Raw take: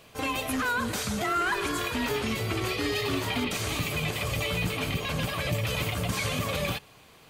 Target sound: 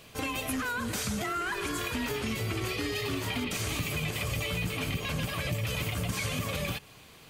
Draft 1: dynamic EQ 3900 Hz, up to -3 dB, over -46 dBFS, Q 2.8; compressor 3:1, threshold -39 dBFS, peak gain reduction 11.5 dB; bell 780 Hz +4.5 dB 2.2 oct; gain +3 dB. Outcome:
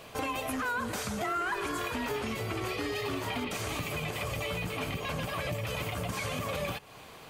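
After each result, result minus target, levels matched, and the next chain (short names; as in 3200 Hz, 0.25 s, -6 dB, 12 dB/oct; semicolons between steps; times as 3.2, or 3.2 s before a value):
compressor: peak gain reduction +5 dB; 1000 Hz band +4.5 dB
dynamic EQ 3900 Hz, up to -3 dB, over -46 dBFS, Q 2.8; compressor 3:1, threshold -31.5 dBFS, peak gain reduction 6.5 dB; bell 780 Hz +4.5 dB 2.2 oct; gain +3 dB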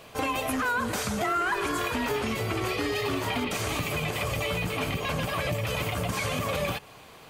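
1000 Hz band +4.5 dB
dynamic EQ 3900 Hz, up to -3 dB, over -46 dBFS, Q 2.8; compressor 3:1, threshold -31.5 dBFS, peak gain reduction 6.5 dB; bell 780 Hz -4.5 dB 2.2 oct; gain +3 dB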